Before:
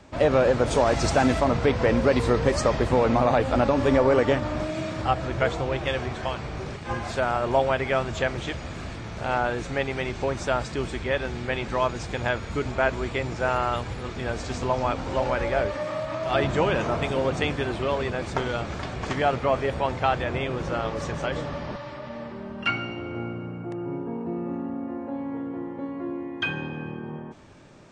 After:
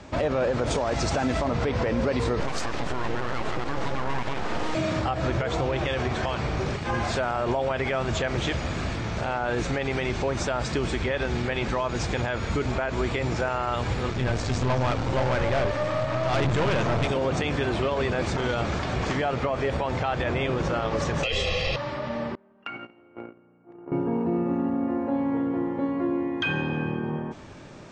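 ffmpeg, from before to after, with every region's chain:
-filter_complex "[0:a]asettb=1/sr,asplit=3[s0][s1][s2];[s0]atrim=end=2.404[s3];[s1]atrim=start=2.4:end=4.75,asetpts=PTS-STARTPTS,afade=t=in:d=0.004:c=qsin,afade=t=out:st=2.346:d=0.004:c=qsin,highpass=f=62:w=0.5412,highpass=f=62:w=1.3066,aeval=exprs='abs(val(0))':c=same[s4];[s2]atrim=start=4.746[s5];[s3][s4]acrossfade=d=0.004:c1=hsin:c2=qsin[s6];[s6][s5]acrossfade=d=0.004:c1=qsin:c2=hsin,asettb=1/sr,asplit=3[s7][s8][s9];[s7]atrim=end=14.104[s10];[s8]atrim=start=14.1:end=17.07,asetpts=PTS-STARTPTS,afade=t=in:d=0.004:c=qsin,afade=t=out:st=2.966:d=0.004:c=qsin,equalizer=f=120:w=2.6:g=9,aeval=exprs='(tanh(20*val(0)+0.55)-tanh(0.55))/20':c=same[s11];[s9]atrim=start=17.066[s12];[s10][s11]acrossfade=d=0.004:c1=hsin:c2=qsin[s13];[s13][s12]acrossfade=d=0.004:c1=qsin:c2=hsin,asettb=1/sr,asplit=3[s14][s15][s16];[s14]atrim=end=21.234[s17];[s15]atrim=start=21.23:end=21.76,asetpts=PTS-STARTPTS,afade=t=in:d=0.004:c=qsin,afade=t=out:st=0.526:d=0.004:c=qsin,highshelf=f=2000:t=q:w=3:g=9.5,aecho=1:1:1.5:0.73,atrim=end_sample=23373,afreqshift=-71[s18];[s16]atrim=start=21.756[s19];[s17][s18]acrossfade=d=0.004:c1=hsin:c2=qsin[s20];[s20][s19]acrossfade=d=0.004:c1=qsin:c2=hsin,asettb=1/sr,asplit=3[s21][s22][s23];[s21]atrim=end=22.354[s24];[s22]atrim=start=22.35:end=23.92,asetpts=PTS-STARTPTS,afade=t=in:d=0.004:c=qsin,afade=t=out:st=1.566:d=0.004:c=qsin,agate=range=0.0501:threshold=0.0316:ratio=16:release=100:detection=peak,acrossover=split=200 2800:gain=0.2 1 0.141[s25][s26][s27];[s25][s26][s27]amix=inputs=3:normalize=0,acompressor=threshold=0.0141:ratio=16:attack=3.2:release=140:knee=1:detection=peak[s28];[s23]atrim=start=23.916[s29];[s24][s28]acrossfade=d=0.004:c1=hsin:c2=qsin[s30];[s30][s29]acrossfade=d=0.004:c1=qsin:c2=hsin,lowpass=f=8100:w=0.5412,lowpass=f=8100:w=1.3066,acompressor=threshold=0.0708:ratio=6,alimiter=limit=0.0708:level=0:latency=1,volume=2"

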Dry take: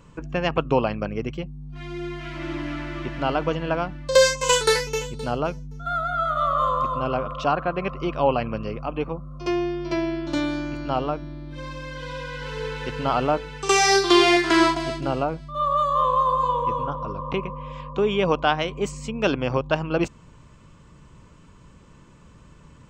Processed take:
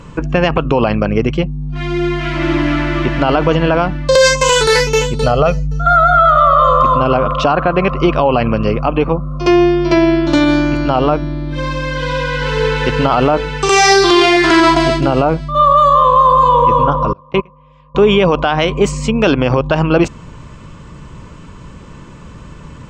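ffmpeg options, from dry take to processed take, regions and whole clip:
-filter_complex "[0:a]asettb=1/sr,asplit=3[s0][s1][s2];[s0]atrim=end=5.224[s3];[s1]atrim=start=5.22:end=6.83,asetpts=PTS-STARTPTS,afade=t=in:d=0.004:c=qsin,afade=t=out:st=1.606:d=0.004:c=qsin,equalizer=f=8400:w=4.4:g=-3,aecho=1:1:1.6:0.75,atrim=end_sample=71001[s4];[s2]atrim=start=6.826[s5];[s3][s4]acrossfade=d=0.004:c1=hsin:c2=qsin[s6];[s6][s5]acrossfade=d=0.004:c1=qsin:c2=hsin,asettb=1/sr,asplit=3[s7][s8][s9];[s7]atrim=end=17.134[s10];[s8]atrim=start=17.13:end=17.95,asetpts=PTS-STARTPTS,afade=t=in:d=0.004:c=qsin,afade=t=out:st=0.816:d=0.004:c=qsin,highpass=75,agate=range=0.0501:threshold=0.0501:ratio=16:release=100:detection=peak,asubboost=boost=8.5:cutoff=130[s11];[s9]atrim=start=17.946[s12];[s10][s11]acrossfade=d=0.004:c1=hsin:c2=qsin[s13];[s13][s12]acrossfade=d=0.004:c1=qsin:c2=hsin,highshelf=f=9100:g=-10,alimiter=level_in=6.68:limit=0.891:release=50:level=0:latency=1,volume=0.891"

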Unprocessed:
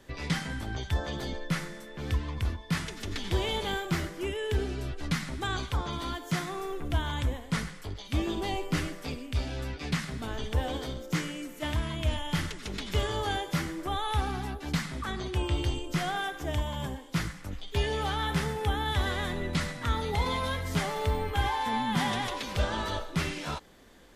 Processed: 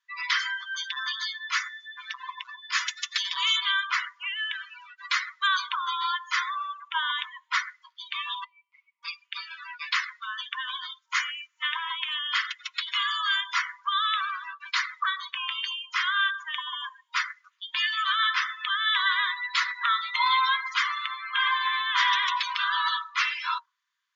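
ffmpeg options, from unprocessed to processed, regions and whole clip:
-filter_complex "[0:a]asettb=1/sr,asplit=3[s0][s1][s2];[s0]atrim=end=0.394[s3];[s1]atrim=start=0.39:end=3.57,asetpts=PTS-STARTPTS,afade=t=in:d=0.004:c=qsin,afade=t=out:st=3.176:d=0.004:c=qsin,highshelf=f=5500:g=9.5,volume=21.1,asoftclip=hard,volume=0.0473[s4];[s2]atrim=start=3.566[s5];[s3][s4]acrossfade=d=0.004:c1=hsin:c2=qsin[s6];[s6][s5]acrossfade=d=0.004:c1=qsin:c2=hsin,asettb=1/sr,asplit=3[s7][s8][s9];[s7]atrim=end=8.444[s10];[s8]atrim=start=8.44:end=9.03,asetpts=PTS-STARTPTS,afade=t=in:d=0.004:c=qsin,afade=t=out:st=0.586:d=0.004:c=qsin,asplit=3[s11][s12][s13];[s11]bandpass=f=300:t=q:w=8,volume=1[s14];[s12]bandpass=f=870:t=q:w=8,volume=0.501[s15];[s13]bandpass=f=2240:t=q:w=8,volume=0.355[s16];[s14][s15][s16]amix=inputs=3:normalize=0,equalizer=f=290:t=o:w=2.7:g=-6.5[s17];[s9]atrim=start=9.026[s18];[s10][s17]acrossfade=d=0.004:c1=hsin:c2=qsin[s19];[s19][s18]acrossfade=d=0.004:c1=qsin:c2=hsin,afftdn=nr=31:nf=-39,afftfilt=real='re*between(b*sr/4096,940,7300)':imag='im*between(b*sr/4096,940,7300)':win_size=4096:overlap=0.75,acontrast=89,volume=1.58"

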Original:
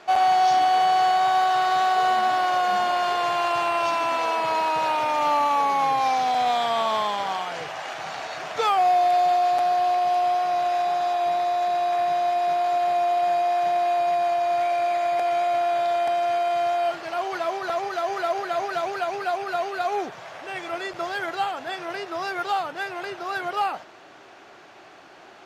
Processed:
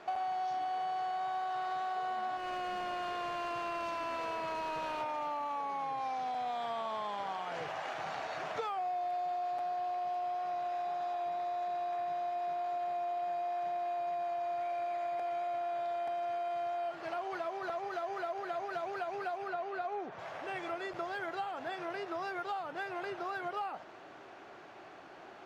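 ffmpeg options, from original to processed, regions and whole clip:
-filter_complex "[0:a]asettb=1/sr,asplit=3[s0][s1][s2];[s0]atrim=end=2.374[s3];[s1]atrim=start=2.37:end=5.01,asetpts=PTS-STARTPTS,afade=t=in:d=0.004:c=qsin,afade=t=out:st=2.636:d=0.004:c=qsin,asoftclip=type=hard:threshold=0.0794,equalizer=f=830:t=o:w=0.29:g=-10.5[s4];[s2]atrim=start=5.006[s5];[s3][s4]acrossfade=d=0.004:c1=hsin:c2=qsin[s6];[s6][s5]acrossfade=d=0.004:c1=qsin:c2=hsin,asettb=1/sr,asplit=3[s7][s8][s9];[s7]atrim=end=19.484[s10];[s8]atrim=start=19.48:end=20.19,asetpts=PTS-STARTPTS,afade=t=in:d=0.004:c=qsin,afade=t=out:st=0.706:d=0.004:c=qsin,highpass=100,aemphasis=mode=reproduction:type=50kf[s11];[s9]atrim=start=20.186[s12];[s10][s11]acrossfade=d=0.004:c1=hsin:c2=qsin[s13];[s13][s12]acrossfade=d=0.004:c1=qsin:c2=hsin,highshelf=f=2800:g=-9.5,acompressor=threshold=0.0251:ratio=6,volume=0.708"

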